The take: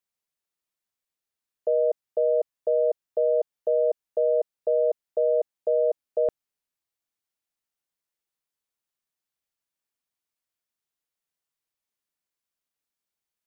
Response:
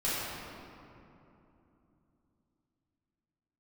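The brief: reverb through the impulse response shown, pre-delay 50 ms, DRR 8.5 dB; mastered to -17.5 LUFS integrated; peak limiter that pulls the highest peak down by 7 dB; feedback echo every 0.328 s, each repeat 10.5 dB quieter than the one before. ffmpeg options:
-filter_complex "[0:a]alimiter=limit=-22.5dB:level=0:latency=1,aecho=1:1:328|656|984:0.299|0.0896|0.0269,asplit=2[a][b];[1:a]atrim=start_sample=2205,adelay=50[c];[b][c]afir=irnorm=-1:irlink=0,volume=-17.5dB[d];[a][d]amix=inputs=2:normalize=0,volume=15dB"

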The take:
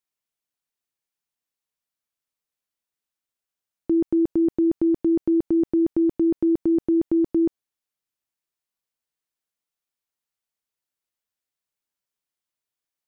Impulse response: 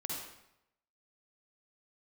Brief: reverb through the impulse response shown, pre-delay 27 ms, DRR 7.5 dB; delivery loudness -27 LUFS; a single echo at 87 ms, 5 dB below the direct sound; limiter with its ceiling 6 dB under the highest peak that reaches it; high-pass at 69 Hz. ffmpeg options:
-filter_complex "[0:a]highpass=69,alimiter=limit=-20.5dB:level=0:latency=1,aecho=1:1:87:0.562,asplit=2[a][b];[1:a]atrim=start_sample=2205,adelay=27[c];[b][c]afir=irnorm=-1:irlink=0,volume=-8.5dB[d];[a][d]amix=inputs=2:normalize=0,volume=-3.5dB"

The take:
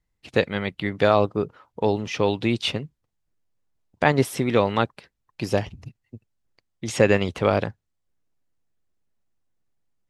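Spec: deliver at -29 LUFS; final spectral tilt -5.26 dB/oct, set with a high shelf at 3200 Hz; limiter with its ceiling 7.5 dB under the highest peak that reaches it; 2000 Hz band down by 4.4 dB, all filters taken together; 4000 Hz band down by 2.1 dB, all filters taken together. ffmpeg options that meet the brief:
-af "equalizer=f=2k:t=o:g=-6.5,highshelf=f=3.2k:g=6,equalizer=f=4k:t=o:g=-4.5,volume=-2dB,alimiter=limit=-13.5dB:level=0:latency=1"

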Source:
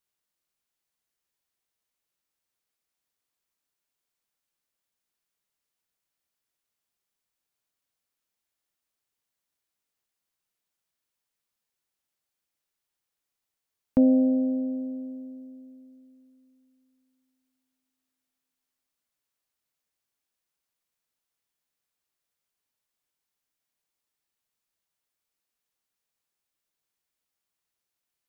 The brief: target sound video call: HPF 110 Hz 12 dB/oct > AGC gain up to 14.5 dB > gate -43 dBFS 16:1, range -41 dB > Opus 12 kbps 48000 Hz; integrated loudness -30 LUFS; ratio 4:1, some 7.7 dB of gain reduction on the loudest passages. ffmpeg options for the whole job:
-af "acompressor=threshold=-25dB:ratio=4,highpass=110,dynaudnorm=m=14.5dB,agate=range=-41dB:threshold=-43dB:ratio=16,volume=-12dB" -ar 48000 -c:a libopus -b:a 12k

